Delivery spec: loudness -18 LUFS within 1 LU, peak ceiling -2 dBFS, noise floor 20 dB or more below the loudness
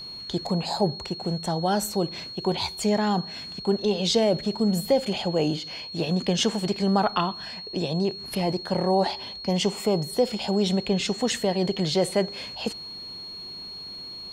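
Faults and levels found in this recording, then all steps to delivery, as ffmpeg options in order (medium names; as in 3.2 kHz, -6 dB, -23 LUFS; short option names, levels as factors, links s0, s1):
steady tone 4.3 kHz; tone level -36 dBFS; loudness -26.0 LUFS; peak level -9.0 dBFS; loudness target -18.0 LUFS
-> -af "bandreject=f=4300:w=30"
-af "volume=2.51,alimiter=limit=0.794:level=0:latency=1"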